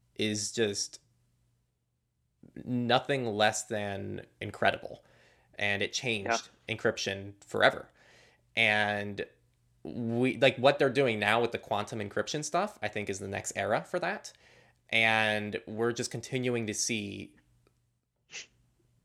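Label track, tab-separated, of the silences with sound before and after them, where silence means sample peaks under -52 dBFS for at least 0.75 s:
0.970000	2.430000	silence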